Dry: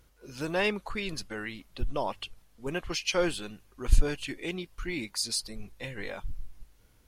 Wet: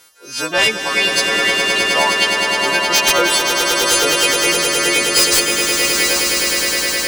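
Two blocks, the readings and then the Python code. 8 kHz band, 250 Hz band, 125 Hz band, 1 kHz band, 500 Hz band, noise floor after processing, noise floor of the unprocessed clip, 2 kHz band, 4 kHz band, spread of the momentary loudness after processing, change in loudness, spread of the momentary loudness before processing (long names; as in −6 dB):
+24.0 dB, +11.5 dB, +1.5 dB, +20.0 dB, +14.5 dB, −30 dBFS, −62 dBFS, +22.5 dB, +23.0 dB, 3 LU, +19.5 dB, 14 LU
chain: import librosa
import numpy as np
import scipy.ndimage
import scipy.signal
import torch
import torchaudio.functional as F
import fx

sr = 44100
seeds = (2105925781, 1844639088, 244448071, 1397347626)

y = fx.freq_snap(x, sr, grid_st=2)
y = fx.weighting(y, sr, curve='A')
y = fx.dereverb_blind(y, sr, rt60_s=0.57)
y = fx.fold_sine(y, sr, drive_db=11, ceiling_db=-9.5)
y = fx.echo_swell(y, sr, ms=104, loudest=8, wet_db=-7.0)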